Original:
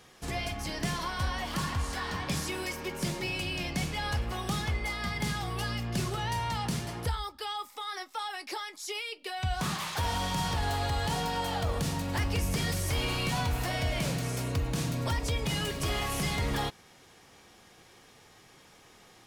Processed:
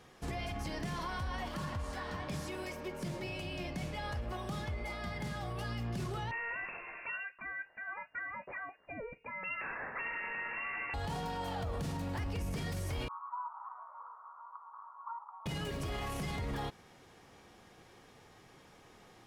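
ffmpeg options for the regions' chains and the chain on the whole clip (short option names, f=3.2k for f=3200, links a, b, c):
-filter_complex "[0:a]asettb=1/sr,asplit=3[a][b][c];[a]atrim=end=1.484[d];[b]atrim=start=1.48:end=5.65,asetpts=PTS-STARTPTS,afade=t=in:d=0.004:c=qsin,afade=t=out:st=4.166:d=0.004:c=qsin,aeval=exprs='val(0)+0.00708*sin(2*PI*600*n/s)':c=same,flanger=delay=2.7:depth=7.6:regen=80:speed=1.4:shape=sinusoidal[e];[c]atrim=start=5.646[f];[d][e]acrossfade=d=0.004:c1=hsin:c2=qsin[g];[g][f]acrossfade=d=0.004:c1=qsin:c2=hsin,asettb=1/sr,asplit=3[h][i][j];[h]atrim=end=6.314[k];[i]atrim=start=6.31:end=10.94,asetpts=PTS-STARTPTS,afade=t=in:d=0.004:c=qsin,afade=t=out:st=4.626:d=0.004:c=qsin,equalizer=f=170:t=o:w=2.3:g=-13.5,lowpass=f=2.4k:t=q:w=0.5098,lowpass=f=2.4k:t=q:w=0.6013,lowpass=f=2.4k:t=q:w=0.9,lowpass=f=2.4k:t=q:w=2.563,afreqshift=-2800[l];[j]atrim=start=10.936[m];[k][l]acrossfade=d=0.004:c1=hsin:c2=qsin[n];[n][m]acrossfade=d=0.004:c1=qsin:c2=hsin,asettb=1/sr,asplit=3[o][p][q];[o]atrim=end=13.084[r];[p]atrim=start=13.08:end=15.46,asetpts=PTS-STARTPTS,afade=t=in:d=0.004:c=qsin,afade=t=out:st=2.376:d=0.004:c=qsin,asuperpass=centerf=1100:order=8:qfactor=2.7,asplit=7[s][t][u][v][w][x][y];[t]adelay=112,afreqshift=-83,volume=-17dB[z];[u]adelay=224,afreqshift=-166,volume=-21.6dB[aa];[v]adelay=336,afreqshift=-249,volume=-26.2dB[ab];[w]adelay=448,afreqshift=-332,volume=-30.7dB[ac];[x]adelay=560,afreqshift=-415,volume=-35.3dB[ad];[y]adelay=672,afreqshift=-498,volume=-39.9dB[ae];[s][z][aa][ab][ac][ad][ae]amix=inputs=7:normalize=0,atrim=end_sample=104958[af];[q]atrim=start=15.456[ag];[r][af]acrossfade=d=0.004:c1=hsin:c2=qsin[ah];[ah][ag]acrossfade=d=0.004:c1=qsin:c2=hsin,highshelf=f=2.3k:g=-8.5,alimiter=level_in=6.5dB:limit=-24dB:level=0:latency=1:release=39,volume=-6.5dB"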